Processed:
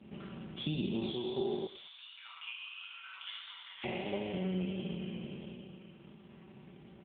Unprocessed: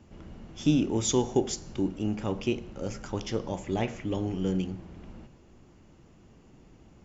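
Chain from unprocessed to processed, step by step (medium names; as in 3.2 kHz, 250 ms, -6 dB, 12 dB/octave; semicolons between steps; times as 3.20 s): spectral sustain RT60 2.90 s; treble shelf 2.3 kHz +10.5 dB; comb 5.2 ms, depth 74%; transient shaper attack +5 dB, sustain -10 dB; compression 2.5:1, threshold -33 dBFS, peak gain reduction 16.5 dB; 1.67–3.84 s: rippled Chebyshev high-pass 1 kHz, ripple 3 dB; vibrato 1.5 Hz 31 cents; overload inside the chain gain 19.5 dB; feedback delay 103 ms, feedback 25%, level -18 dB; trim -3.5 dB; AMR-NB 7.95 kbps 8 kHz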